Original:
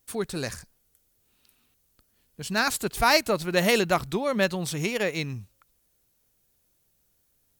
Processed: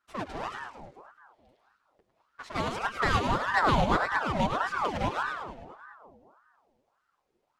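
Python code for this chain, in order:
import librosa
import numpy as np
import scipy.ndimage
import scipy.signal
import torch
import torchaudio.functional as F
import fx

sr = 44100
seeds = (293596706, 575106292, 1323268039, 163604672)

y = fx.halfwave_hold(x, sr)
y = fx.echo_split(y, sr, split_hz=510.0, low_ms=210, high_ms=104, feedback_pct=52, wet_db=-6)
y = fx.env_flanger(y, sr, rest_ms=7.9, full_db=-16.0)
y = fx.spacing_loss(y, sr, db_at_10k=21)
y = fx.ring_lfo(y, sr, carrier_hz=870.0, swing_pct=60, hz=1.7)
y = y * 10.0 ** (-2.0 / 20.0)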